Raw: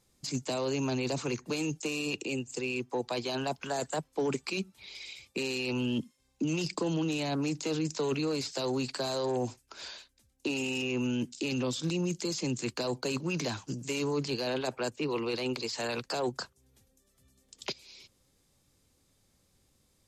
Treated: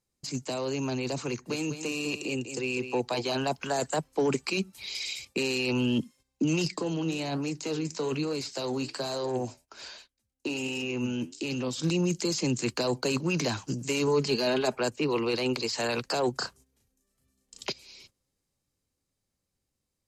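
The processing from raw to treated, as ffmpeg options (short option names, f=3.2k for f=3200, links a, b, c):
-filter_complex "[0:a]asettb=1/sr,asplit=3[a][b][c];[a]atrim=end=1.304[d];[b]atrim=start=1.3:end=3.37,asetpts=PTS-STARTPTS,afade=t=in:d=0.004:c=qsin,afade=t=out:st=2.066:d=0.004:c=qsin,aecho=1:1:200:0.335,atrim=end_sample=91287[e];[c]atrim=start=3.366[f];[d][e]acrossfade=d=0.004:c1=hsin:c2=qsin[g];[g][f]acrossfade=d=0.004:c1=qsin:c2=hsin,asettb=1/sr,asplit=3[h][i][j];[h]atrim=end=4.734[k];[i]atrim=start=4.73:end=5.25,asetpts=PTS-STARTPTS,afade=t=in:d=0.004:c=qsin,afade=t=out:st=0.516:d=0.004:c=qsin,highshelf=f=3.9k:g=12[l];[j]atrim=start=5.246[m];[k][l]acrossfade=d=0.004:c1=hsin:c2=qsin[n];[n][m]acrossfade=d=0.004:c1=qsin:c2=hsin,asplit=3[o][p][q];[o]afade=t=out:st=6.68:d=0.02[r];[p]flanger=delay=3.9:depth=8.7:regen=78:speed=1.2:shape=triangular,afade=t=in:st=6.68:d=0.02,afade=t=out:st=11.77:d=0.02[s];[q]afade=t=in:st=11.77:d=0.02[t];[r][s][t]amix=inputs=3:normalize=0,asettb=1/sr,asplit=3[u][v][w];[u]atrim=end=14.074[x];[v]atrim=start=14.07:end=14.78,asetpts=PTS-STARTPTS,afade=t=in:d=0.004:c=qsin,afade=t=out:st=0.706:d=0.004:c=qsin,aecho=1:1:4.8:0.52,atrim=end_sample=31311[y];[w]atrim=start=14.776[z];[x][y]acrossfade=d=0.004:c1=hsin:c2=qsin[aa];[aa][z]acrossfade=d=0.004:c1=qsin:c2=hsin,asettb=1/sr,asplit=3[ab][ac][ad];[ab]atrim=end=16.384[ae];[ac]atrim=start=16.38:end=17.63,asetpts=PTS-STARTPTS,afade=t=in:d=0.004:c=qsin,afade=t=out:st=1.246:d=0.004:c=qsin,asplit=2[af][ag];[ag]adelay=35,volume=-2.5dB[ah];[af][ah]amix=inputs=2:normalize=0,atrim=end_sample=55125[ai];[ad]atrim=start=17.626[aj];[ae][ai]acrossfade=d=0.004:c1=hsin:c2=qsin[ak];[ak][aj]acrossfade=d=0.004:c1=qsin:c2=hsin,agate=range=-13dB:threshold=-57dB:ratio=16:detection=peak,bandreject=f=3.5k:w=16,dynaudnorm=f=480:g=11:m=4.5dB"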